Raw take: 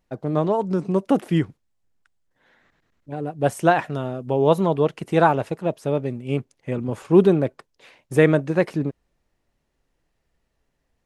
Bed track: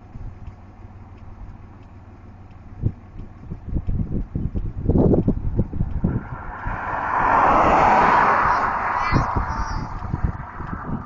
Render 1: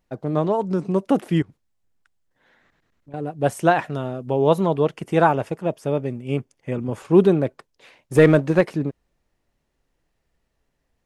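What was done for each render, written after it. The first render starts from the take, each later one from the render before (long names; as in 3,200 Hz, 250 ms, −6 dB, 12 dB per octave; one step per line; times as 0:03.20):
0:01.42–0:03.14: downward compressor, threshold −41 dBFS
0:04.92–0:06.98: notch filter 4,000 Hz, Q 8.6
0:08.15–0:08.61: leveller curve on the samples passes 1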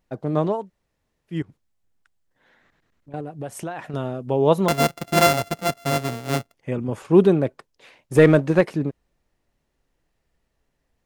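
0:00.58–0:01.39: fill with room tone, crossfade 0.24 s
0:03.20–0:03.94: downward compressor 5 to 1, threshold −28 dBFS
0:04.68–0:06.54: samples sorted by size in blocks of 64 samples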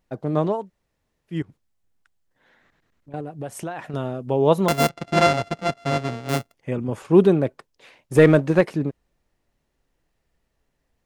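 0:04.89–0:06.29: high-frequency loss of the air 96 metres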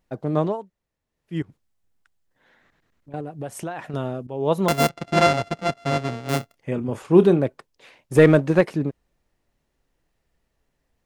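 0:00.42–0:01.35: duck −8.5 dB, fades 0.27 s
0:04.27–0:04.69: fade in, from −14.5 dB
0:06.38–0:07.39: double-tracking delay 29 ms −12 dB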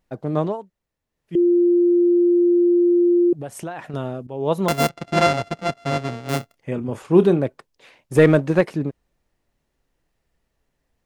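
0:01.35–0:03.33: beep over 349 Hz −12.5 dBFS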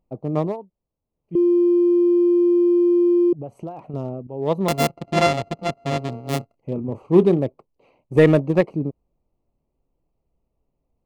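adaptive Wiener filter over 25 samples
notch filter 1,500 Hz, Q 5.2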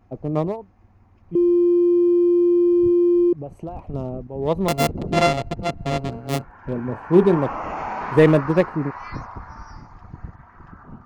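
mix in bed track −13.5 dB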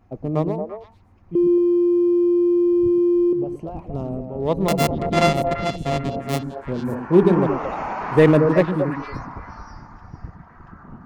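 echo through a band-pass that steps 113 ms, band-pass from 220 Hz, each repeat 1.4 octaves, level −1.5 dB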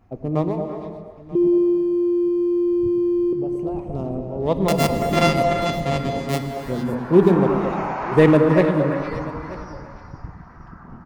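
single-tap delay 935 ms −19 dB
reverb whose tail is shaped and stops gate 490 ms flat, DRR 7 dB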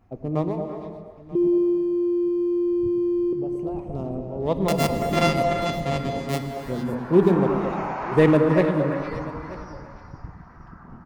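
level −3 dB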